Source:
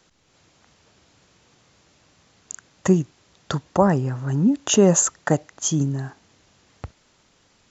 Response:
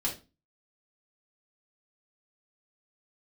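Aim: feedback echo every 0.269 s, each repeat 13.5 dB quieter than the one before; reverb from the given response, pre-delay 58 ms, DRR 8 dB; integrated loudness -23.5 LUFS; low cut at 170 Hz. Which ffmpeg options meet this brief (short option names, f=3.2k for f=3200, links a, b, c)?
-filter_complex "[0:a]highpass=170,aecho=1:1:269|538:0.211|0.0444,asplit=2[a][b];[1:a]atrim=start_sample=2205,adelay=58[c];[b][c]afir=irnorm=-1:irlink=0,volume=-13dB[d];[a][d]amix=inputs=2:normalize=0,volume=-2.5dB"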